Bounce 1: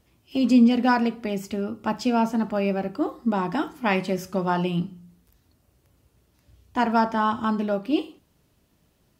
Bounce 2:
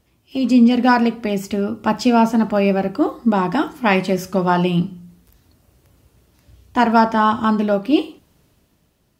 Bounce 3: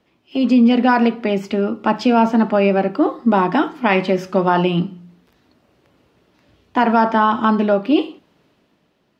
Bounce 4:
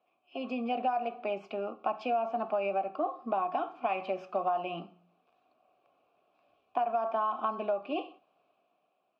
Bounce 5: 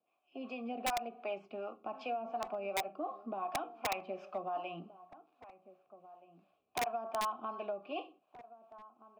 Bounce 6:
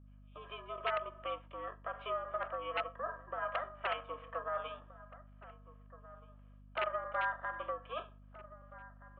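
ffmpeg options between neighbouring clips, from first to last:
ffmpeg -i in.wav -af "dynaudnorm=framelen=100:gausssize=13:maxgain=6.5dB,volume=1.5dB" out.wav
ffmpeg -i in.wav -filter_complex "[0:a]alimiter=limit=-8dB:level=0:latency=1:release=49,acrossover=split=170 4500:gain=0.126 1 0.112[link_01][link_02][link_03];[link_01][link_02][link_03]amix=inputs=3:normalize=0,volume=3.5dB" out.wav
ffmpeg -i in.wav -filter_complex "[0:a]asplit=3[link_01][link_02][link_03];[link_01]bandpass=frequency=730:width_type=q:width=8,volume=0dB[link_04];[link_02]bandpass=frequency=1090:width_type=q:width=8,volume=-6dB[link_05];[link_03]bandpass=frequency=2440:width_type=q:width=8,volume=-9dB[link_06];[link_04][link_05][link_06]amix=inputs=3:normalize=0,acompressor=threshold=-27dB:ratio=6" out.wav
ffmpeg -i in.wav -filter_complex "[0:a]acrossover=split=450[link_01][link_02];[link_01]aeval=exprs='val(0)*(1-0.7/2+0.7/2*cos(2*PI*2.7*n/s))':channel_layout=same[link_03];[link_02]aeval=exprs='val(0)*(1-0.7/2-0.7/2*cos(2*PI*2.7*n/s))':channel_layout=same[link_04];[link_03][link_04]amix=inputs=2:normalize=0,acrossover=split=1600[link_05][link_06];[link_05]aeval=exprs='(mod(16.8*val(0)+1,2)-1)/16.8':channel_layout=same[link_07];[link_07][link_06]amix=inputs=2:normalize=0,asplit=2[link_08][link_09];[link_09]adelay=1574,volume=-16dB,highshelf=frequency=4000:gain=-35.4[link_10];[link_08][link_10]amix=inputs=2:normalize=0,volume=-3.5dB" out.wav
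ffmpeg -i in.wav -af "highpass=frequency=550:width_type=q:width=0.5412,highpass=frequency=550:width_type=q:width=1.307,lowpass=frequency=2600:width_type=q:width=0.5176,lowpass=frequency=2600:width_type=q:width=0.7071,lowpass=frequency=2600:width_type=q:width=1.932,afreqshift=220,aeval=exprs='val(0)*sin(2*PI*310*n/s)':channel_layout=same,aeval=exprs='val(0)+0.001*(sin(2*PI*50*n/s)+sin(2*PI*2*50*n/s)/2+sin(2*PI*3*50*n/s)/3+sin(2*PI*4*50*n/s)/4+sin(2*PI*5*50*n/s)/5)':channel_layout=same,volume=4dB" out.wav

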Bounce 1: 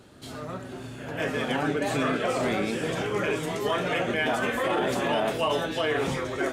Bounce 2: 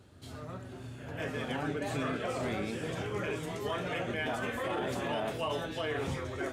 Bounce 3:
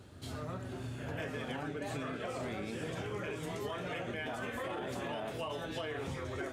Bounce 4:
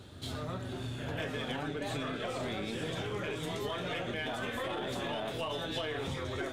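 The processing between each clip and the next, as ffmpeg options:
ffmpeg -i in.wav -af "equalizer=frequency=87:width_type=o:width=0.85:gain=12.5,volume=-8.5dB" out.wav
ffmpeg -i in.wav -af "acompressor=threshold=-39dB:ratio=10,volume=3.5dB" out.wav
ffmpeg -i in.wav -filter_complex "[0:a]equalizer=frequency=3600:width_type=o:width=0.37:gain=9,asplit=2[link_01][link_02];[link_02]aeval=exprs='clip(val(0),-1,0.00596)':channel_layout=same,volume=-7dB[link_03];[link_01][link_03]amix=inputs=2:normalize=0" out.wav

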